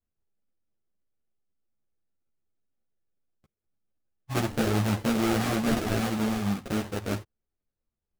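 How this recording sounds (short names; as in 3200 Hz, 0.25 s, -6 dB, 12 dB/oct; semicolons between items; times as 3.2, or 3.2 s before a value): aliases and images of a low sample rate 1000 Hz, jitter 20%; a shimmering, thickened sound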